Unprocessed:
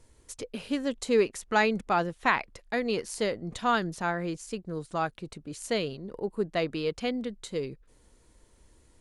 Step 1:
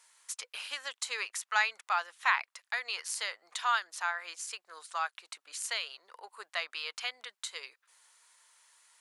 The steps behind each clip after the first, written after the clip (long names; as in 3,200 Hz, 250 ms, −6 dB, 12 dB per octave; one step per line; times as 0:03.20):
high-pass filter 1,000 Hz 24 dB per octave
in parallel at +2 dB: downward compressor, threshold −41 dBFS, peak gain reduction 19 dB
on the sum: level −2 dB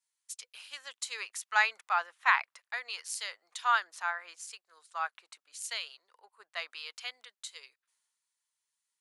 multiband upward and downward expander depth 70%
level −3 dB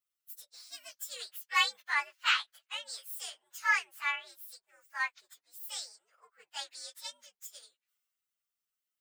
partials spread apart or drawn together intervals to 122%
level +2.5 dB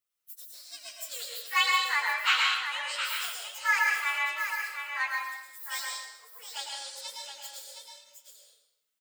single-tap delay 716 ms −7.5 dB
dense smooth reverb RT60 0.87 s, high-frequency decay 0.9×, pre-delay 95 ms, DRR −1 dB
level +1.5 dB